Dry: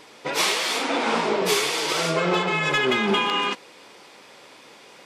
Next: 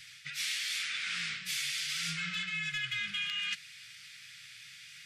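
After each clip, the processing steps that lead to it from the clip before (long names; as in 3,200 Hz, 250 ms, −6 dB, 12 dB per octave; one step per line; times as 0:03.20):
inverse Chebyshev band-stop filter 240–1,000 Hz, stop band 40 dB
reversed playback
downward compressor, threshold −33 dBFS, peak gain reduction 13 dB
reversed playback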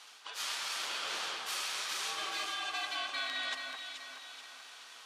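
ring modulation 960 Hz
delay that swaps between a low-pass and a high-pass 215 ms, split 2,000 Hz, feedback 68%, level −3 dB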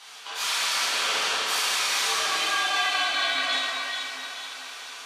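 dense smooth reverb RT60 1.7 s, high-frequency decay 0.95×, DRR −7.5 dB
level +4.5 dB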